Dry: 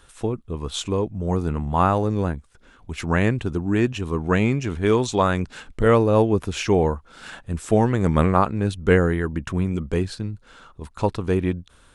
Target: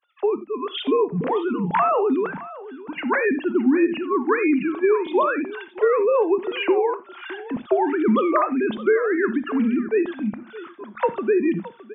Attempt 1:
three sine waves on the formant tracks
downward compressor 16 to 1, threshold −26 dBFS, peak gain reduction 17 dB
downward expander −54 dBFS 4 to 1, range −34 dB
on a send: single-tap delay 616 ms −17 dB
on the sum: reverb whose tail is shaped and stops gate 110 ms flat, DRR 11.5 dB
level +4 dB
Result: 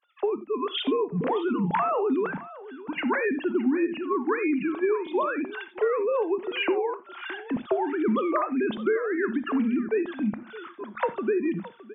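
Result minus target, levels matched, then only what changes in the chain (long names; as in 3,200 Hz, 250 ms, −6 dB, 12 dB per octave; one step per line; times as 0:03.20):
downward compressor: peak gain reduction +6.5 dB
change: downward compressor 16 to 1, threshold −19 dBFS, peak gain reduction 10.5 dB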